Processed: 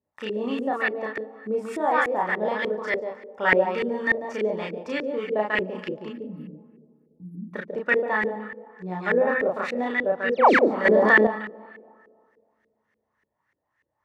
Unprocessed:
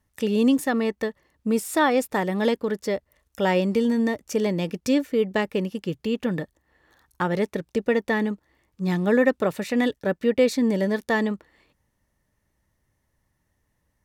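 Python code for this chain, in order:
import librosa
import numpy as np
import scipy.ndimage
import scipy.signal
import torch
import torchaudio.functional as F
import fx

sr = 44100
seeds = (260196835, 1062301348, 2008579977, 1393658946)

p1 = scipy.signal.sosfilt(scipy.signal.butter(2, 89.0, 'highpass', fs=sr, output='sos'), x)
p2 = librosa.effects.preemphasis(p1, coef=0.97, zi=[0.0])
p3 = fx.rider(p2, sr, range_db=4, speed_s=0.5)
p4 = p2 + (p3 * 10.0 ** (-2.5 / 20.0))
p5 = fx.brickwall_bandstop(p4, sr, low_hz=320.0, high_hz=9900.0, at=(6.08, 7.53), fade=0.02)
p6 = fx.spec_paint(p5, sr, seeds[0], shape='fall', start_s=10.32, length_s=0.22, low_hz=200.0, high_hz=6900.0, level_db=-28.0)
p7 = fx.doubler(p6, sr, ms=33.0, db=-2.5)
p8 = p7 + 10.0 ** (-4.5 / 20.0) * np.pad(p7, (int(143 * sr / 1000.0), 0))[:len(p7)]
p9 = fx.rev_freeverb(p8, sr, rt60_s=2.2, hf_ratio=0.3, predelay_ms=120, drr_db=15.5)
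p10 = fx.filter_lfo_lowpass(p9, sr, shape='saw_up', hz=3.4, low_hz=380.0, high_hz=2000.0, q=2.8)
p11 = fx.env_flatten(p10, sr, amount_pct=70, at=(10.85, 11.27))
y = p11 * 10.0 ** (8.0 / 20.0)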